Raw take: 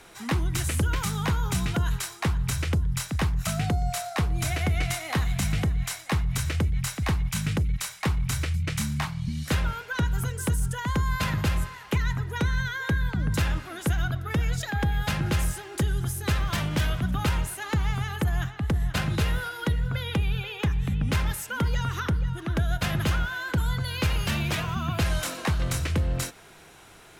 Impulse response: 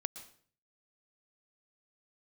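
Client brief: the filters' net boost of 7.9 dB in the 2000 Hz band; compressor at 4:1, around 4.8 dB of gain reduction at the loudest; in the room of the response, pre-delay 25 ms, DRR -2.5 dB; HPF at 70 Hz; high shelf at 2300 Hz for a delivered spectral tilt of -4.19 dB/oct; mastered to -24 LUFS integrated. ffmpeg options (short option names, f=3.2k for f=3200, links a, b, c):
-filter_complex "[0:a]highpass=70,equalizer=f=2k:t=o:g=8,highshelf=f=2.3k:g=4.5,acompressor=threshold=-25dB:ratio=4,asplit=2[a][b];[1:a]atrim=start_sample=2205,adelay=25[c];[b][c]afir=irnorm=-1:irlink=0,volume=3dB[d];[a][d]amix=inputs=2:normalize=0,volume=0.5dB"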